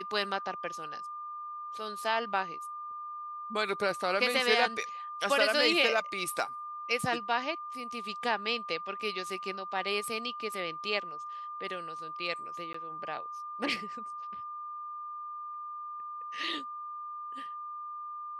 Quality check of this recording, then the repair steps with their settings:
tone 1200 Hz -38 dBFS
12.73–12.74 gap 14 ms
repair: notch 1200 Hz, Q 30; interpolate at 12.73, 14 ms

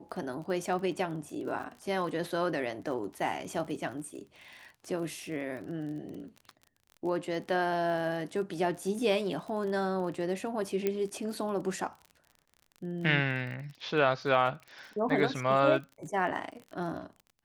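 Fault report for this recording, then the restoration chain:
crackle 32/s -40 dBFS
10.87 pop -16 dBFS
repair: de-click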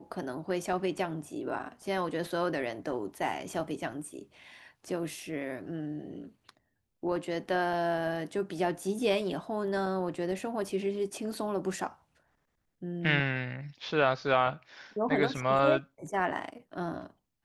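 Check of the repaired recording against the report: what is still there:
none

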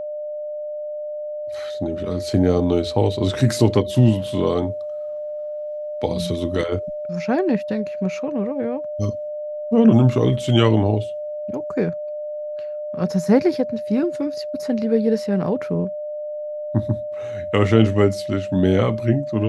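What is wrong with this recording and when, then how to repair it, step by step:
tone 600 Hz -26 dBFS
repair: notch 600 Hz, Q 30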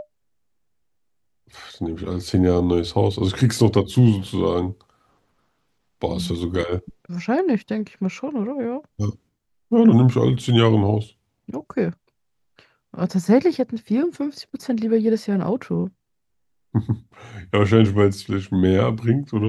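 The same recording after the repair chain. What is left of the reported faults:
none

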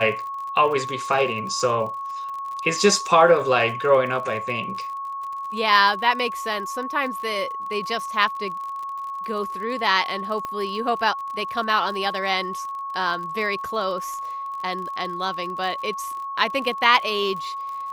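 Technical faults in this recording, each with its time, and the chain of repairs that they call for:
crackle 50/s -32 dBFS
tone 1100 Hz -28 dBFS
10.45 pop -17 dBFS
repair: de-click; notch 1100 Hz, Q 30

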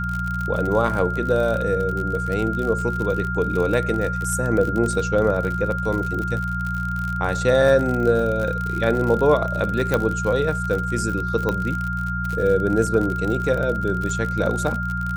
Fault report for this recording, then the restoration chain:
crackle 54/s -25 dBFS
hum 60 Hz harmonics 3 -27 dBFS
tone 1400 Hz -26 dBFS
9.94 pop -7 dBFS
11.49 pop -11 dBFS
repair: de-click; de-hum 60 Hz, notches 3; notch 1400 Hz, Q 30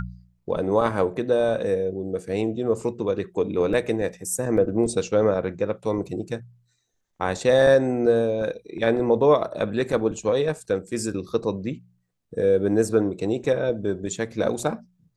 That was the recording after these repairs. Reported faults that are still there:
9.94 pop

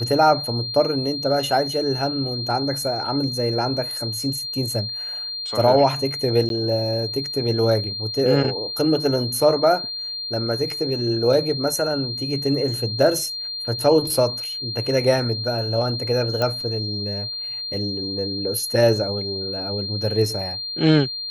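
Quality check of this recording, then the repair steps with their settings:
tone 4200 Hz -27 dBFS
6.49–6.5 gap 12 ms
16.42 pop -10 dBFS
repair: de-click; notch 4200 Hz, Q 30; interpolate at 6.49, 12 ms

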